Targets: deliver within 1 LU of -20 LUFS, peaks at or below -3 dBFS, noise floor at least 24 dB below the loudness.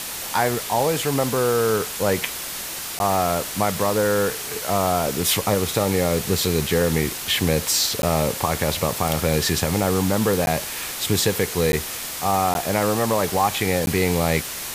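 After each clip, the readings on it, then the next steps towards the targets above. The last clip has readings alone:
dropouts 6; longest dropout 11 ms; noise floor -31 dBFS; noise floor target -46 dBFS; loudness -21.5 LUFS; peak -5.5 dBFS; loudness target -20.0 LUFS
-> interpolate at 2.99/8.02/10.46/11.72/12.54/13.86, 11 ms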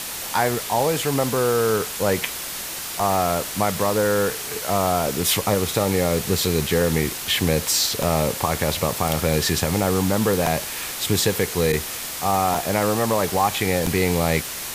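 dropouts 0; noise floor -31 dBFS; noise floor target -46 dBFS
-> denoiser 15 dB, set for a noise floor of -31 dBFS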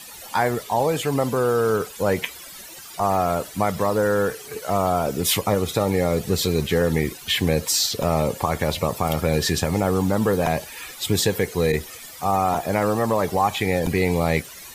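noise floor -40 dBFS; noise floor target -47 dBFS
-> denoiser 7 dB, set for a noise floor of -40 dBFS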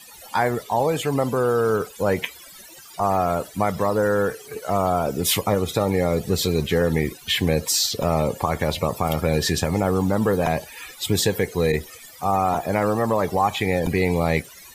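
noise floor -44 dBFS; noise floor target -47 dBFS
-> denoiser 6 dB, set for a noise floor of -44 dBFS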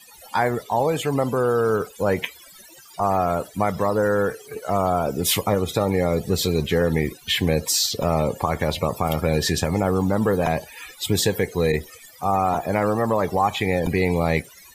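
noise floor -47 dBFS; loudness -22.5 LUFS; peak -6.5 dBFS; loudness target -20.0 LUFS
-> gain +2.5 dB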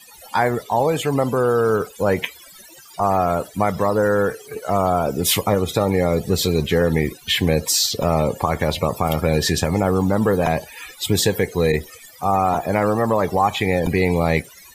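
loudness -20.0 LUFS; peak -4.0 dBFS; noise floor -45 dBFS

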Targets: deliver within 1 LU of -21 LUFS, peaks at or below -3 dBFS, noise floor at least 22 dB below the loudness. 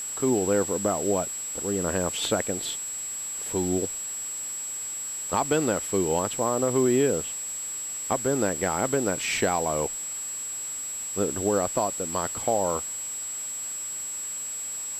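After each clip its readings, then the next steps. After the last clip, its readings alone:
steady tone 7700 Hz; tone level -31 dBFS; noise floor -34 dBFS; noise floor target -49 dBFS; loudness -26.5 LUFS; peak -10.5 dBFS; loudness target -21.0 LUFS
-> notch 7700 Hz, Q 30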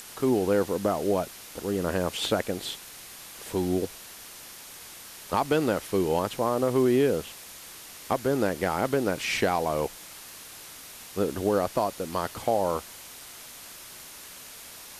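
steady tone none; noise floor -45 dBFS; noise floor target -50 dBFS
-> denoiser 6 dB, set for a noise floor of -45 dBFS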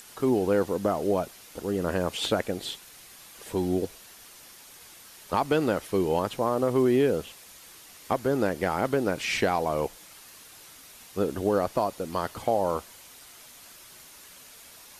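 noise floor -50 dBFS; loudness -27.5 LUFS; peak -11.5 dBFS; loudness target -21.0 LUFS
-> gain +6.5 dB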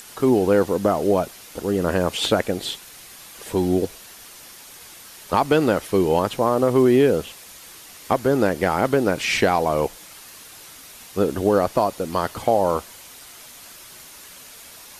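loudness -21.0 LUFS; peak -5.0 dBFS; noise floor -43 dBFS

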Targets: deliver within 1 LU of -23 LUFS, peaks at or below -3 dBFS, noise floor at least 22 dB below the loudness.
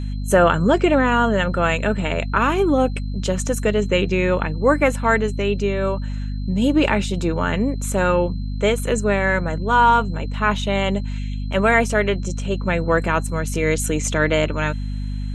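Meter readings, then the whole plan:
hum 50 Hz; harmonics up to 250 Hz; hum level -23 dBFS; steady tone 4100 Hz; tone level -49 dBFS; loudness -20.0 LUFS; peak -3.5 dBFS; loudness target -23.0 LUFS
-> de-hum 50 Hz, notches 5; notch 4100 Hz, Q 30; gain -3 dB

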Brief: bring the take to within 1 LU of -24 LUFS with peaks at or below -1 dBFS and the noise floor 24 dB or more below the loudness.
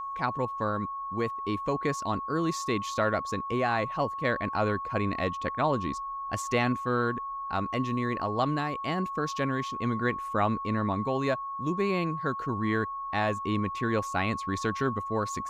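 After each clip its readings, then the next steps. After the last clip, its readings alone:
steady tone 1100 Hz; tone level -33 dBFS; loudness -29.5 LUFS; peak -13.0 dBFS; loudness target -24.0 LUFS
-> notch 1100 Hz, Q 30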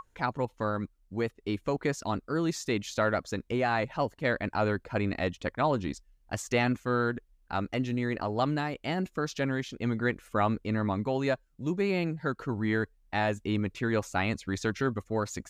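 steady tone none; loudness -31.0 LUFS; peak -13.5 dBFS; loudness target -24.0 LUFS
-> gain +7 dB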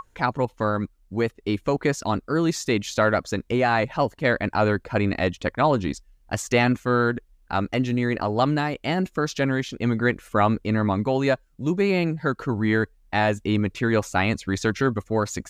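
loudness -24.0 LUFS; peak -6.5 dBFS; noise floor -60 dBFS

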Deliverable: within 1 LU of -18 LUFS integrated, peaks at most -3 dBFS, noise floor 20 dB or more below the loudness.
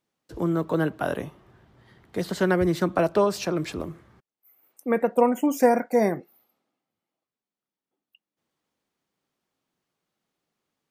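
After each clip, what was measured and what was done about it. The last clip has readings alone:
loudness -24.5 LUFS; peak -7.0 dBFS; loudness target -18.0 LUFS
-> gain +6.5 dB; limiter -3 dBFS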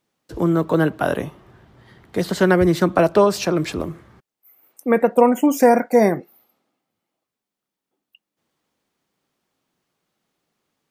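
loudness -18.5 LUFS; peak -3.0 dBFS; noise floor -85 dBFS

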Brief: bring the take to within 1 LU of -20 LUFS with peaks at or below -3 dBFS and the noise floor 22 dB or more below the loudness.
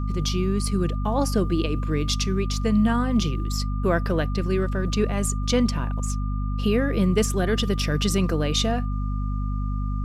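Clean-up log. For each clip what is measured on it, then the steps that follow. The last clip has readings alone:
hum 50 Hz; harmonics up to 250 Hz; hum level -23 dBFS; steady tone 1200 Hz; tone level -39 dBFS; loudness -24.5 LUFS; peak -9.0 dBFS; loudness target -20.0 LUFS
-> de-hum 50 Hz, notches 5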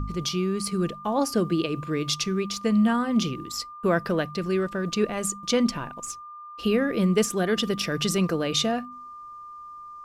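hum none; steady tone 1200 Hz; tone level -39 dBFS
-> notch 1200 Hz, Q 30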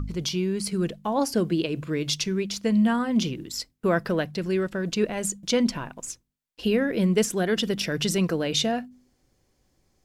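steady tone none; loudness -25.5 LUFS; peak -11.5 dBFS; loudness target -20.0 LUFS
-> gain +5.5 dB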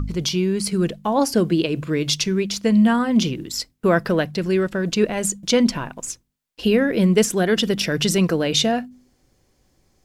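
loudness -20.0 LUFS; peak -6.0 dBFS; noise floor -65 dBFS

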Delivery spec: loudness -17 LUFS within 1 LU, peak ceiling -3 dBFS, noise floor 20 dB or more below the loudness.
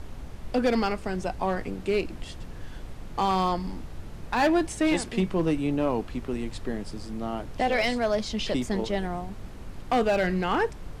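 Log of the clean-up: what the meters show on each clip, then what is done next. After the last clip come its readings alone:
clipped 0.9%; flat tops at -17.0 dBFS; noise floor -41 dBFS; noise floor target -48 dBFS; loudness -27.5 LUFS; peak -17.0 dBFS; loudness target -17.0 LUFS
-> clip repair -17 dBFS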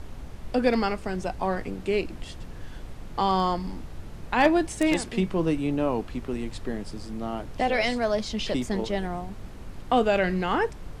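clipped 0.0%; noise floor -41 dBFS; noise floor target -47 dBFS
-> noise print and reduce 6 dB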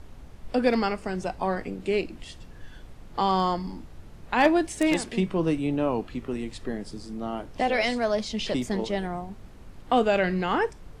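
noise floor -46 dBFS; noise floor target -47 dBFS
-> noise print and reduce 6 dB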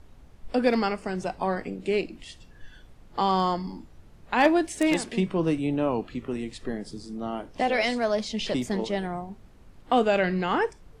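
noise floor -52 dBFS; loudness -27.0 LUFS; peak -8.0 dBFS; loudness target -17.0 LUFS
-> gain +10 dB; limiter -3 dBFS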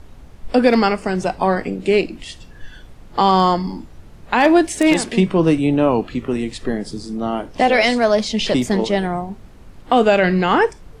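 loudness -17.5 LUFS; peak -3.0 dBFS; noise floor -42 dBFS

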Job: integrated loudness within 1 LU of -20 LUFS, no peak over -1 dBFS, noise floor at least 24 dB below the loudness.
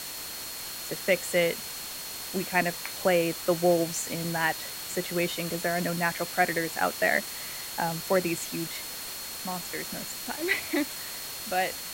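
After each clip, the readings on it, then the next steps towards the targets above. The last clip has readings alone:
steady tone 4300 Hz; tone level -43 dBFS; noise floor -38 dBFS; noise floor target -53 dBFS; loudness -29.0 LUFS; peak -10.5 dBFS; loudness target -20.0 LUFS
-> notch 4300 Hz, Q 30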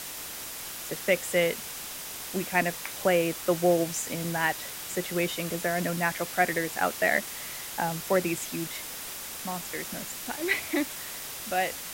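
steady tone none; noise floor -39 dBFS; noise floor target -53 dBFS
-> denoiser 14 dB, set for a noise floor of -39 dBFS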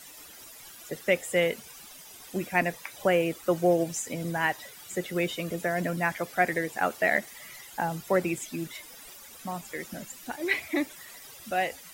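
noise floor -48 dBFS; noise floor target -53 dBFS
-> denoiser 6 dB, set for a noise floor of -48 dBFS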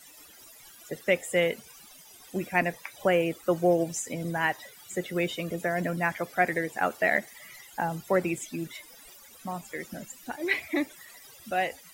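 noise floor -52 dBFS; noise floor target -53 dBFS
-> denoiser 6 dB, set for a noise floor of -52 dBFS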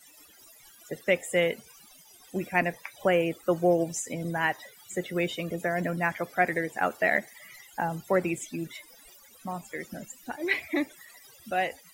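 noise floor -55 dBFS; loudness -29.0 LUFS; peak -10.5 dBFS; loudness target -20.0 LUFS
-> gain +9 dB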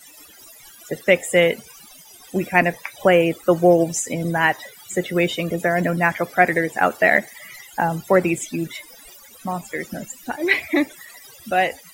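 loudness -20.0 LUFS; peak -1.5 dBFS; noise floor -46 dBFS

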